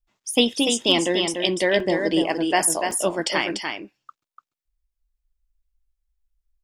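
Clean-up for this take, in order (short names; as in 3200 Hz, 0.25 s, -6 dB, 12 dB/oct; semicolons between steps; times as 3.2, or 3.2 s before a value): clip repair -4 dBFS; interpolate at 1.34/1.8/2.91, 2.8 ms; inverse comb 0.293 s -5.5 dB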